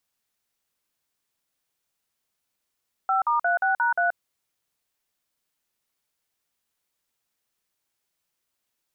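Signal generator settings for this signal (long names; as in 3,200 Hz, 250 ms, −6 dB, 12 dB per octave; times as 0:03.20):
touch tones "5*36#3", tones 129 ms, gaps 48 ms, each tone −22 dBFS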